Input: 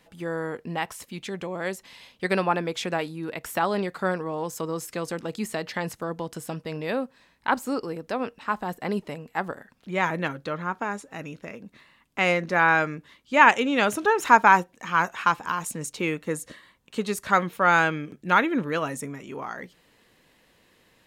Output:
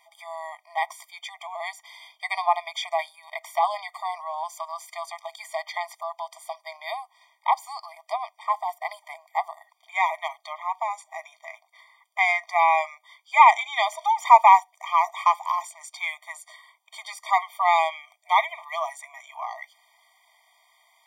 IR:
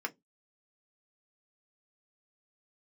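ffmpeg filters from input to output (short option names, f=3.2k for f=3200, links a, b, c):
-filter_complex "[0:a]acrossover=split=5700[a][b];[b]acompressor=threshold=-47dB:ratio=4:attack=1:release=60[c];[a][c]amix=inputs=2:normalize=0,afftfilt=real='re*eq(mod(floor(b*sr/1024/620),2),1)':imag='im*eq(mod(floor(b*sr/1024/620),2),1)':win_size=1024:overlap=0.75,volume=4.5dB"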